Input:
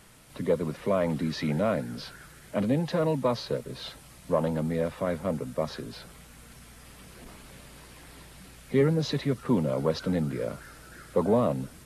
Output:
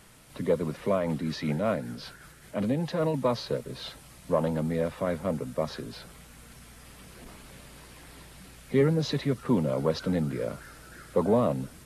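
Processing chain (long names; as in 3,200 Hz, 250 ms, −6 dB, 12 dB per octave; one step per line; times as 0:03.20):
0:00.93–0:03.14: amplitude tremolo 5.2 Hz, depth 32%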